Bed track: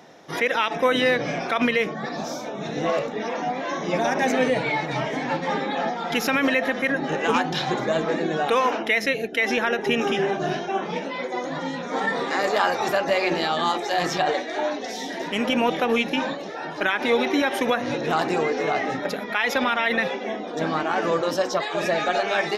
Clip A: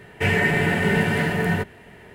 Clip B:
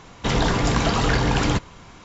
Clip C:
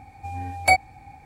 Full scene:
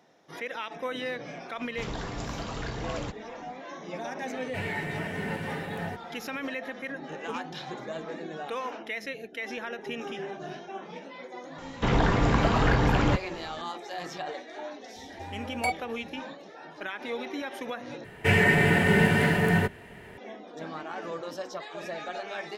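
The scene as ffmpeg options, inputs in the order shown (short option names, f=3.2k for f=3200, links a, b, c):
-filter_complex "[2:a]asplit=2[a][b];[1:a]asplit=2[c][d];[0:a]volume=-13.5dB[e];[b]acrossover=split=2900[f][g];[g]acompressor=threshold=-43dB:ratio=4:attack=1:release=60[h];[f][h]amix=inputs=2:normalize=0[i];[3:a]alimiter=limit=-9.5dB:level=0:latency=1:release=71[j];[e]asplit=2[k][l];[k]atrim=end=18.044[m];[d]atrim=end=2.14,asetpts=PTS-STARTPTS,volume=-1dB[n];[l]atrim=start=20.176[o];[a]atrim=end=2.04,asetpts=PTS-STARTPTS,volume=-15.5dB,afade=t=in:d=0.004:c=hsin,afade=t=out:st=2.036:d=0.004:c=hsin,adelay=1530[p];[c]atrim=end=2.14,asetpts=PTS-STARTPTS,volume=-14dB,afade=t=in:d=0.004:c=hsin,afade=t=out:st=2.136:d=0.004:c=hsin,adelay=190953S[q];[i]atrim=end=2.04,asetpts=PTS-STARTPTS,volume=-2.5dB,afade=t=in:d=0.004:c=hsin,afade=t=out:st=2.036:d=0.004:c=hsin,adelay=11580[r];[j]atrim=end=1.25,asetpts=PTS-STARTPTS,volume=-8.5dB,afade=t=in:d=0.004:c=hsin,afade=t=out:st=1.246:d=0.004:c=hsin,adelay=14960[s];[m][n]acrossfade=d=0.004:c1=hsin:c2=hsin[t];[t][o]acrossfade=d=0.004:c1=hsin:c2=hsin[u];[u][p][q][r][s]amix=inputs=5:normalize=0"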